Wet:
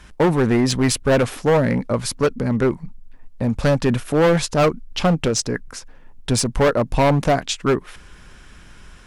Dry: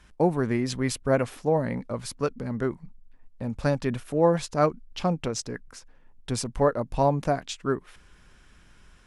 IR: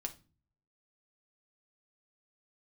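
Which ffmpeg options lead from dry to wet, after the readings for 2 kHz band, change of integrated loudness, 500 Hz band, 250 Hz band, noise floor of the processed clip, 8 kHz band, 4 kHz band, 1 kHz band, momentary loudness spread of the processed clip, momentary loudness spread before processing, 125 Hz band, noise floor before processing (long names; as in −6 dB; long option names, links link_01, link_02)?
+10.5 dB, +7.5 dB, +7.0 dB, +8.5 dB, −44 dBFS, +11.0 dB, +11.5 dB, +5.5 dB, 7 LU, 9 LU, +8.5 dB, −55 dBFS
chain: -af "apsyclip=12.5dB,asoftclip=type=hard:threshold=-10.5dB,volume=-1.5dB"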